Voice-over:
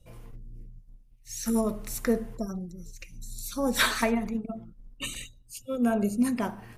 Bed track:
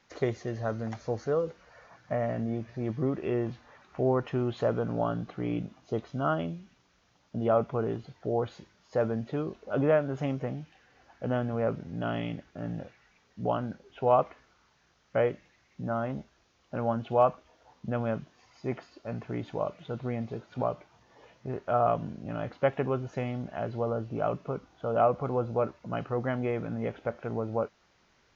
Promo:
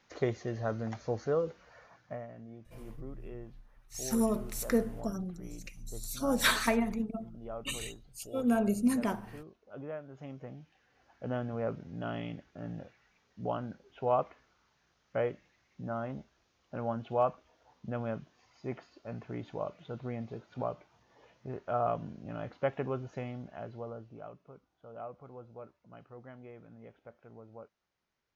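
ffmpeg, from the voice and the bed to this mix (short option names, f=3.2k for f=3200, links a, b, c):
-filter_complex "[0:a]adelay=2650,volume=-2.5dB[a];[1:a]volume=9.5dB,afade=t=out:st=1.76:d=0.51:silence=0.177828,afade=t=in:st=10.09:d=1.25:silence=0.266073,afade=t=out:st=23.03:d=1.31:silence=0.199526[b];[a][b]amix=inputs=2:normalize=0"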